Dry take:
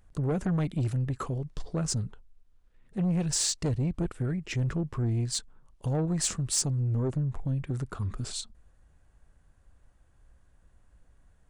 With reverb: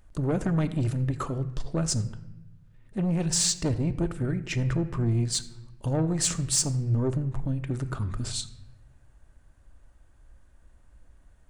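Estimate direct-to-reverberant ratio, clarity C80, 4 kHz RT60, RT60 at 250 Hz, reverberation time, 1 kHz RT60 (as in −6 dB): 9.0 dB, 16.0 dB, 0.75 s, 1.4 s, 1.0 s, 0.95 s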